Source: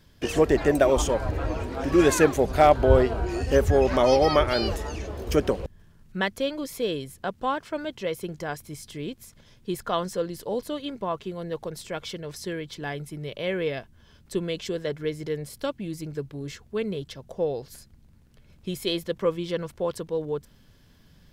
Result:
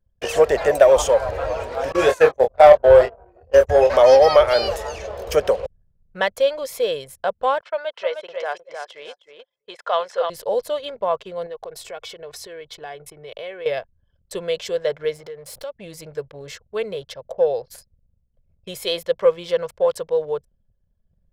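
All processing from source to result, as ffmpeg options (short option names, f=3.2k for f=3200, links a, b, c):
-filter_complex "[0:a]asettb=1/sr,asplit=3[a][b][c];[a]atrim=end=1.924[d];[b]atrim=start=1.92:end=3.9,asetpts=PTS-STARTPTS,afade=t=in:d=0.004:c=qsin,afade=t=out:st=1.976:d=0.004:c=qsin,agate=range=-21dB:threshold=-21dB:ratio=16:release=100:detection=peak,asplit=2[e][f];[f]adelay=25,volume=-6dB[g];[e][g]amix=inputs=2:normalize=0,atrim=end_sample=87318[h];[c]atrim=start=3.896[i];[d][h]acrossfade=d=0.004:c1=hsin:c2=qsin[j];[j][i]acrossfade=d=0.004:c1=qsin:c2=hsin,asettb=1/sr,asplit=3[k][l][m];[k]atrim=end=7.614[n];[l]atrim=start=7.61:end=10.3,asetpts=PTS-STARTPTS,afade=t=in:d=0.004:c=qsin,afade=t=out:st=2.686:d=0.004:c=qsin,highpass=590,lowpass=4.4k,aecho=1:1:309|618|927:0.501|0.0952|0.0181,atrim=end_sample=118629[o];[m]atrim=start=10.296[p];[n][o]acrossfade=d=0.004:c1=hsin:c2=qsin[q];[q][p]acrossfade=d=0.004:c1=qsin:c2=hsin,asettb=1/sr,asplit=3[r][s][t];[r]atrim=end=11.464[u];[s]atrim=start=11.46:end=13.66,asetpts=PTS-STARTPTS,afade=t=in:d=0.004:c=qsin,afade=t=out:st=2.196:d=0.004:c=qsin,agate=range=-33dB:threshold=-45dB:ratio=3:release=100:detection=peak,aecho=1:1:2.7:0.42,atrim=end_sample=97020,acompressor=threshold=-37dB:ratio=4:attack=3.2:release=140:knee=1:detection=peak[v];[t]atrim=start=13.656[w];[u][v]acrossfade=d=0.004:c1=hsin:c2=qsin[x];[x][w]acrossfade=d=0.004:c1=qsin:c2=hsin,asettb=1/sr,asplit=3[y][z][aa];[y]atrim=end=15.164[ab];[z]atrim=start=15.16:end=15.73,asetpts=PTS-STARTPTS,afade=t=in:d=0.004:c=qsin,afade=t=out:st=0.566:d=0.004:c=qsin,aeval=exprs='val(0)+0.5*0.00668*sgn(val(0))':c=same,acompressor=threshold=-38dB:ratio=4:attack=3.2:release=140:knee=1:detection=peak[ac];[aa]atrim=start=15.726[ad];[ab][ac]acrossfade=d=0.004:c1=hsin:c2=qsin[ae];[ae][ad]acrossfade=d=0.004:c1=qsin:c2=hsin,anlmdn=0.0158,lowshelf=f=400:t=q:w=3:g=-9.5,acontrast=34,volume=-1dB"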